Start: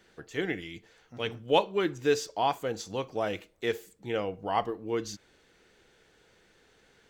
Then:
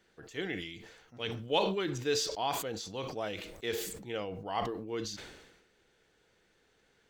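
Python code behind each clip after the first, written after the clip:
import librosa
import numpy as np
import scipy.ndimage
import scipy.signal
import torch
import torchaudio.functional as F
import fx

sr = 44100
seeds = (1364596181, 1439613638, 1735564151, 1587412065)

y = fx.dynamic_eq(x, sr, hz=3900.0, q=1.3, threshold_db=-52.0, ratio=4.0, max_db=7)
y = fx.sustainer(y, sr, db_per_s=50.0)
y = F.gain(torch.from_numpy(y), -7.0).numpy()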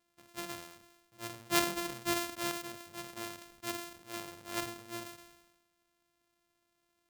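y = np.r_[np.sort(x[:len(x) // 128 * 128].reshape(-1, 128), axis=1).ravel(), x[len(x) // 128 * 128:]]
y = fx.tilt_eq(y, sr, slope=1.5)
y = fx.upward_expand(y, sr, threshold_db=-42.0, expansion=1.5)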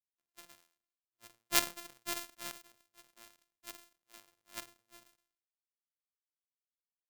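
y = fx.power_curve(x, sr, exponent=2.0)
y = F.gain(torch.from_numpy(y), 7.0).numpy()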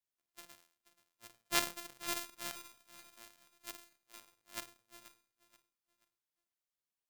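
y = 10.0 ** (-12.5 / 20.0) * np.tanh(x / 10.0 ** (-12.5 / 20.0))
y = fx.echo_feedback(y, sr, ms=481, feedback_pct=33, wet_db=-16.0)
y = F.gain(torch.from_numpy(y), 1.0).numpy()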